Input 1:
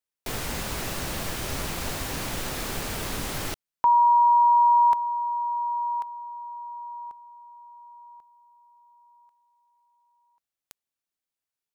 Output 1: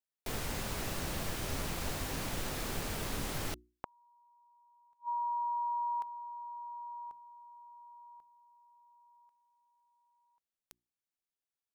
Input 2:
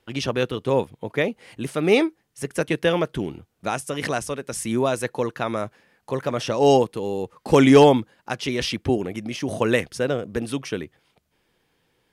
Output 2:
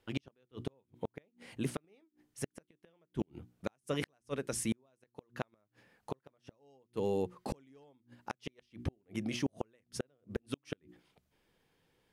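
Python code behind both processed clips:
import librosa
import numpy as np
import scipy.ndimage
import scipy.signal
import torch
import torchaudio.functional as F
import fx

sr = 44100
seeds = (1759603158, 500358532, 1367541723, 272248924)

y = fx.low_shelf(x, sr, hz=460.0, db=3.5)
y = fx.hum_notches(y, sr, base_hz=60, count=6)
y = fx.gate_flip(y, sr, shuts_db=-14.0, range_db=-42)
y = y * 10.0 ** (-7.5 / 20.0)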